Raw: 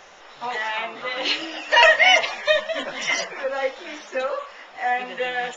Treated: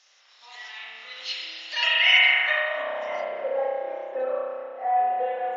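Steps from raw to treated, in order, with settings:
spring reverb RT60 2.2 s, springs 31 ms, chirp 65 ms, DRR −5.5 dB
band-pass filter sweep 5,000 Hz → 610 Hz, 0:01.64–0:03.30
level −3 dB

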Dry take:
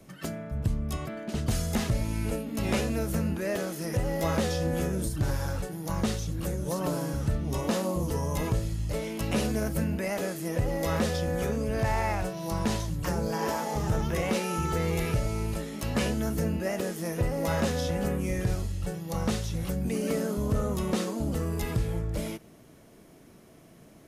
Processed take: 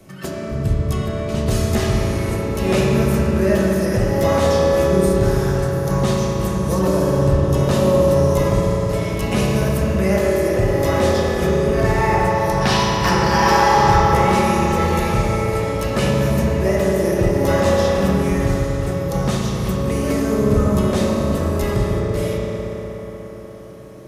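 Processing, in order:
gain on a spectral selection 0:12.62–0:14.01, 690–6,000 Hz +9 dB
convolution reverb RT60 5.1 s, pre-delay 3 ms, DRR −4.5 dB
level +5.5 dB

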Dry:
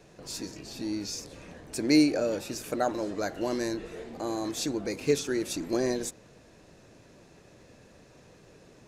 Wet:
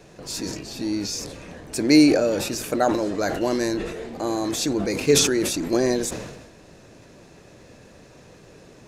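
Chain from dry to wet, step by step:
level that may fall only so fast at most 49 dB per second
level +6.5 dB

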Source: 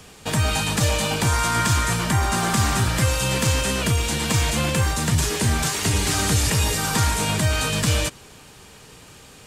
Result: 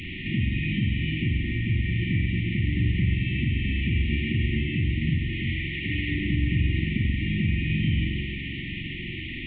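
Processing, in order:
linear delta modulator 16 kbit/s, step −27.5 dBFS
0:05.32–0:06.11: low-shelf EQ 450 Hz −9 dB
downward compressor, threshold −23 dBFS, peak gain reduction 7.5 dB
brick-wall band-stop 380–1,800 Hz
spring reverb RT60 1.7 s, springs 44 ms, chirp 65 ms, DRR 0 dB

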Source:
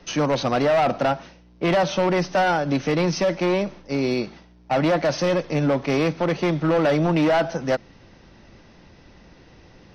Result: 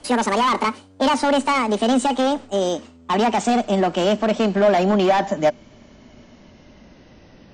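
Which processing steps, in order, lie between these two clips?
gliding playback speed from 166% → 98%
hollow resonant body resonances 240/600/3,000 Hz, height 8 dB

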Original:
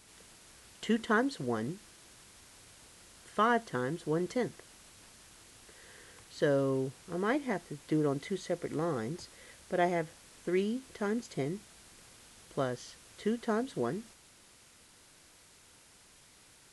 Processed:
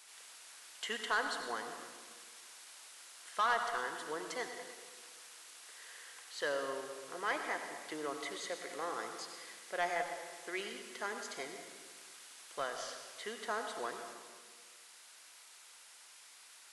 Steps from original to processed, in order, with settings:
high-pass filter 880 Hz 12 dB per octave
soft clipping −27.5 dBFS, distortion −13 dB
convolution reverb RT60 1.6 s, pre-delay 77 ms, DRR 5.5 dB
level +2 dB

